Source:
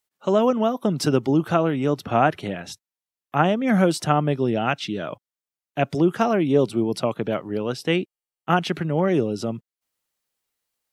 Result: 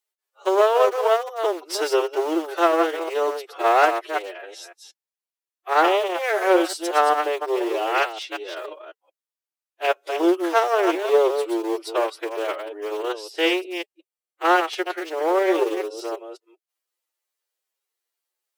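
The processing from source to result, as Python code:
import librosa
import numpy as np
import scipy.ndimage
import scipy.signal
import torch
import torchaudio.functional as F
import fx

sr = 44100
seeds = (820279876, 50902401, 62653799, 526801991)

p1 = fx.reverse_delay(x, sr, ms=107, wet_db=-5.5)
p2 = fx.cheby_harmonics(p1, sr, harmonics=(3, 5, 7, 8), levels_db=(-28, -25, -23, -28), full_scale_db=-0.5)
p3 = np.where(np.abs(p2) >= 10.0 ** (-21.0 / 20.0), p2, 0.0)
p4 = p2 + (p3 * 10.0 ** (-8.0 / 20.0))
p5 = fx.stretch_vocoder(p4, sr, factor=1.7)
y = fx.brickwall_highpass(p5, sr, low_hz=320.0)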